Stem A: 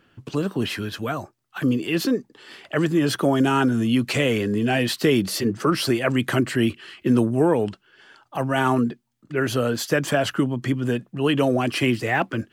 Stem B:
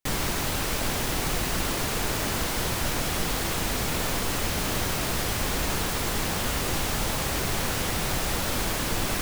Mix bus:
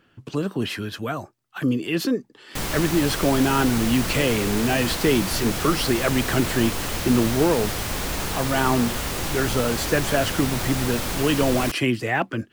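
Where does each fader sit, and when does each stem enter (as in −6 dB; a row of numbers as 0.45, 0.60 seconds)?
−1.0, 0.0 decibels; 0.00, 2.50 seconds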